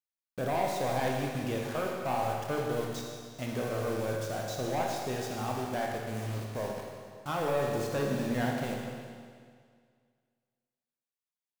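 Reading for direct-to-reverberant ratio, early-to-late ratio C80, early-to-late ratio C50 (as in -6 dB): -1.0 dB, 2.5 dB, 0.5 dB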